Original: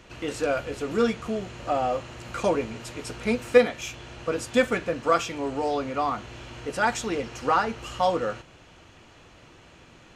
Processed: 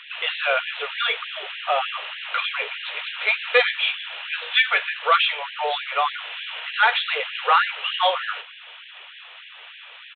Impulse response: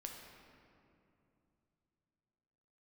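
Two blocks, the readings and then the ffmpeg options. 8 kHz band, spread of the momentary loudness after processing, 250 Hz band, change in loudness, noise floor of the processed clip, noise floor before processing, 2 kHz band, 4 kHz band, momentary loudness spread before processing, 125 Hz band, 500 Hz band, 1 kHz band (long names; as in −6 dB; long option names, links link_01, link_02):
below −40 dB, 22 LU, below −30 dB, +4.5 dB, −44 dBFS, −52 dBFS, +10.5 dB, +14.5 dB, 11 LU, below −40 dB, −4.5 dB, +4.0 dB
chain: -af "equalizer=frequency=210:width=0.36:gain=-9.5,bandreject=frequency=60:width_type=h:width=6,bandreject=frequency=120:width_type=h:width=6,bandreject=frequency=180:width_type=h:width=6,bandreject=frequency=240:width_type=h:width=6,bandreject=frequency=300:width_type=h:width=6,bandreject=frequency=360:width_type=h:width=6,bandreject=frequency=420:width_type=h:width=6,bandreject=frequency=480:width_type=h:width=6,crystalizer=i=7:c=0,aresample=8000,asoftclip=type=tanh:threshold=-15dB,aresample=44100,afftfilt=real='re*gte(b*sr/1024,380*pow(1600/380,0.5+0.5*sin(2*PI*3.3*pts/sr)))':imag='im*gte(b*sr/1024,380*pow(1600/380,0.5+0.5*sin(2*PI*3.3*pts/sr)))':win_size=1024:overlap=0.75,volume=6.5dB"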